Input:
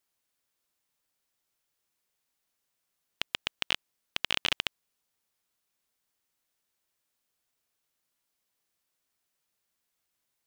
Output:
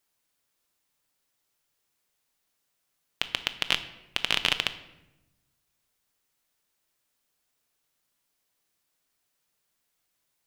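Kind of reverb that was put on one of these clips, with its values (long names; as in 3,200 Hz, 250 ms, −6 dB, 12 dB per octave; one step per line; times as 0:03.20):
rectangular room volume 410 cubic metres, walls mixed, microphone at 0.4 metres
level +3.5 dB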